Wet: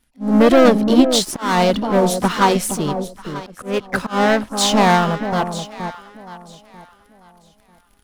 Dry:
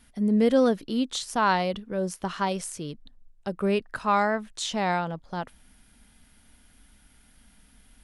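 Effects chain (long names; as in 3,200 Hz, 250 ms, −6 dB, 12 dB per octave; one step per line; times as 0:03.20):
leveller curve on the samples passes 3
on a send: delay that swaps between a low-pass and a high-pass 471 ms, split 890 Hz, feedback 51%, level −6 dB
on the sum: volume swells 244 ms
in parallel at −4 dB: soft clipping −23.5 dBFS, distortion −7 dB
on the sum: pitch-shifted copies added +4 semitones −9 dB, +5 semitones −15 dB
expander for the loud parts 1.5 to 1, over −30 dBFS
level +3 dB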